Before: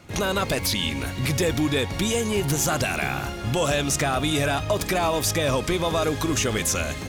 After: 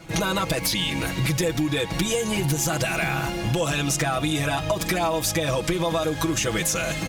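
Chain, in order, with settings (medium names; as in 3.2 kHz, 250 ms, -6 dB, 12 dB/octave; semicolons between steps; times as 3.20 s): comb 6.1 ms, depth 95%; compression, threshold -23 dBFS, peak gain reduction 9 dB; trim +2.5 dB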